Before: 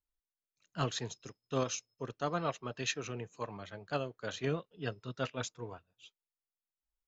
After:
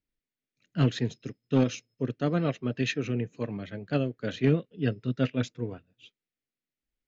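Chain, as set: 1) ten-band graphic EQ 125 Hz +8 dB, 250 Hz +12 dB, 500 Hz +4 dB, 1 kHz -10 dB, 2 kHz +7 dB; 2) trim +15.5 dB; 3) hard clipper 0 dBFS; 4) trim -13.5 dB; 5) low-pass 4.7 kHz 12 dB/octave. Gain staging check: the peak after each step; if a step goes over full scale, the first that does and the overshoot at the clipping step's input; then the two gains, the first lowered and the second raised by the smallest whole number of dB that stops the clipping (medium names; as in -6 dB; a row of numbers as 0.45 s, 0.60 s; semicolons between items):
-11.5 dBFS, +4.0 dBFS, 0.0 dBFS, -13.5 dBFS, -13.5 dBFS; step 2, 4.0 dB; step 2 +11.5 dB, step 4 -9.5 dB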